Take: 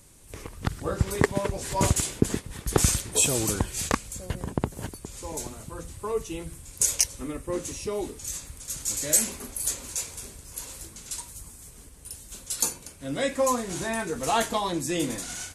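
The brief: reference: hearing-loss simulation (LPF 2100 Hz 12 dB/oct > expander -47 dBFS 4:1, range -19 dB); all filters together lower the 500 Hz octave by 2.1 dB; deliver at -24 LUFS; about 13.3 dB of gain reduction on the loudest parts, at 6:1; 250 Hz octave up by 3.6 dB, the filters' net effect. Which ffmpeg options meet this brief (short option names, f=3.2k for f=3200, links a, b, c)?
-af "equalizer=f=250:t=o:g=6,equalizer=f=500:t=o:g=-4.5,acompressor=threshold=-32dB:ratio=6,lowpass=2.1k,agate=range=-19dB:threshold=-47dB:ratio=4,volume=15.5dB"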